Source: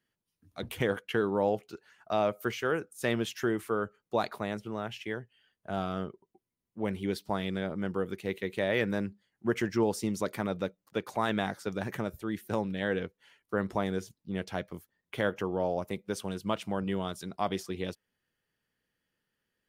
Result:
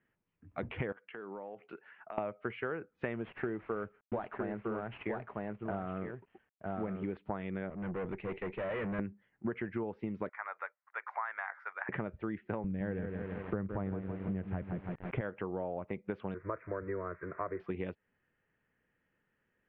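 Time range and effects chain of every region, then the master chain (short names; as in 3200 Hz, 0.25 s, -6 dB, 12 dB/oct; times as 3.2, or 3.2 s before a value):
0.92–2.18 HPF 130 Hz 24 dB/oct + low shelf 370 Hz -8.5 dB + compressor 12:1, threshold -45 dBFS
3.16–7.17 CVSD 32 kbps + high shelf 2500 Hz -7.5 dB + echo 0.957 s -6.5 dB
7.7–8.99 HPF 73 Hz + tube stage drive 38 dB, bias 0.45
10.29–11.89 HPF 980 Hz 24 dB/oct + band shelf 3300 Hz -13 dB 1 oct
12.64–15.21 RIAA curve playback + lo-fi delay 0.164 s, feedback 55%, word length 7-bit, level -7 dB
16.34–17.6 switching spikes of -28 dBFS + steep low-pass 2100 Hz + fixed phaser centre 800 Hz, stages 6
whole clip: compressor 12:1, threshold -38 dBFS; steep low-pass 2500 Hz 36 dB/oct; gain +5 dB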